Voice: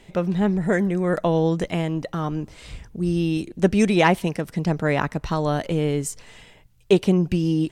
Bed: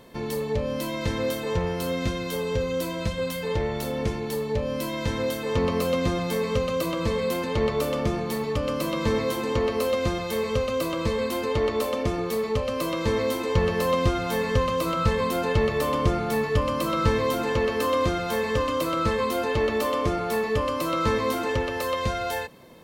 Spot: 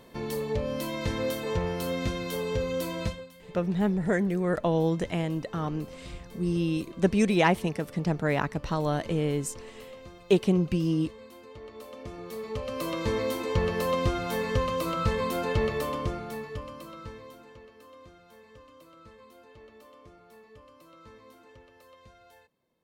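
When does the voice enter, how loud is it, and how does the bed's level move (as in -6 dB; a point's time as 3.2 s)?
3.40 s, -5.0 dB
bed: 3.08 s -3 dB
3.29 s -21.5 dB
11.6 s -21.5 dB
12.89 s -4 dB
15.69 s -4 dB
17.72 s -28 dB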